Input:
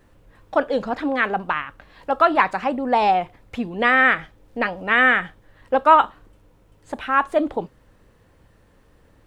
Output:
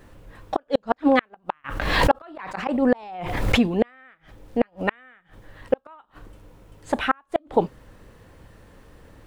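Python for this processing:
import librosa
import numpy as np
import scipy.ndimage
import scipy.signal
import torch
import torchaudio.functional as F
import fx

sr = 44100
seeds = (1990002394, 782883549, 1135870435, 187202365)

y = fx.gate_flip(x, sr, shuts_db=-12.0, range_db=-41)
y = fx.pre_swell(y, sr, db_per_s=43.0, at=(1.64, 3.65), fade=0.02)
y = y * librosa.db_to_amplitude(6.5)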